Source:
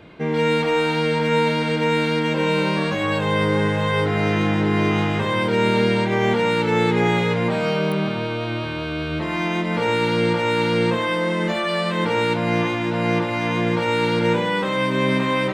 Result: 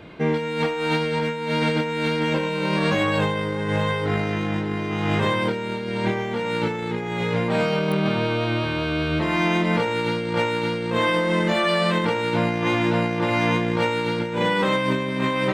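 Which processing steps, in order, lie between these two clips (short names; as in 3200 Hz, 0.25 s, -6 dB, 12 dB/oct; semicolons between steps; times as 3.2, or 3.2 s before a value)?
negative-ratio compressor -22 dBFS, ratio -0.5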